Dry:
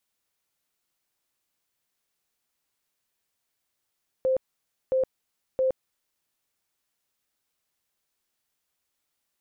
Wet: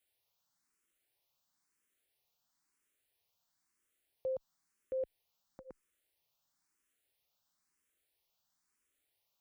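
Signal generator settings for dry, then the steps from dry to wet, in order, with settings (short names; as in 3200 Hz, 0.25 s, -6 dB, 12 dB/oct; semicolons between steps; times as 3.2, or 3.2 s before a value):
tone bursts 522 Hz, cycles 61, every 0.67 s, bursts 3, -20 dBFS
limiter -30.5 dBFS; endless phaser +1 Hz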